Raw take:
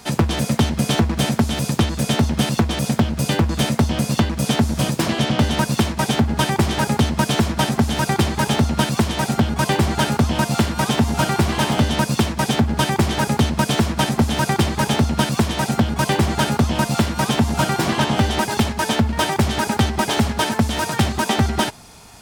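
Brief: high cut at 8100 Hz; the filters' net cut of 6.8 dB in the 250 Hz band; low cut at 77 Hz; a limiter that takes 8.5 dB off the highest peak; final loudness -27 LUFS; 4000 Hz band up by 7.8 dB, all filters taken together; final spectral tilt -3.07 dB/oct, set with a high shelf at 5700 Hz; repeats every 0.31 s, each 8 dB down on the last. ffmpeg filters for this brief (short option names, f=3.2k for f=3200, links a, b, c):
-af "highpass=77,lowpass=8.1k,equalizer=f=250:t=o:g=-9,equalizer=f=4k:t=o:g=8.5,highshelf=f=5.7k:g=5.5,alimiter=limit=-11.5dB:level=0:latency=1,aecho=1:1:310|620|930|1240|1550:0.398|0.159|0.0637|0.0255|0.0102,volume=-6.5dB"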